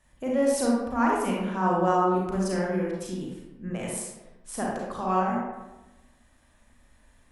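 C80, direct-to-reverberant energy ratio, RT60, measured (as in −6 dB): 3.5 dB, −3.5 dB, 1.0 s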